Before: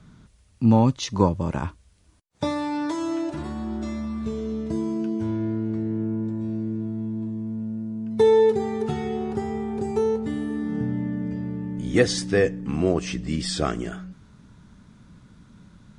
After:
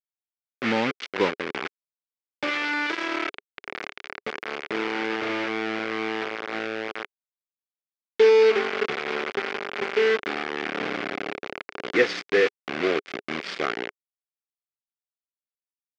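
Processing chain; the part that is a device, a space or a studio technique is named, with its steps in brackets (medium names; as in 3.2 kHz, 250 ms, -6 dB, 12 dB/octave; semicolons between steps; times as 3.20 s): hand-held game console (bit crusher 4-bit; cabinet simulation 400–4300 Hz, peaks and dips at 410 Hz +5 dB, 640 Hz -5 dB, 940 Hz -7 dB, 1.5 kHz +3 dB, 2.2 kHz +6 dB, 4 kHz -4 dB)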